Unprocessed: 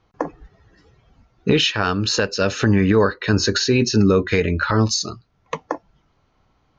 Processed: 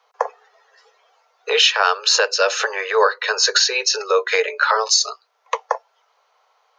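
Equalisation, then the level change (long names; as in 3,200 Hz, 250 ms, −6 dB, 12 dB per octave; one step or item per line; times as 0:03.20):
Butterworth high-pass 430 Hz 96 dB per octave
parametric band 940 Hz +7 dB 1.5 octaves
high-shelf EQ 2,800 Hz +9 dB
−1.0 dB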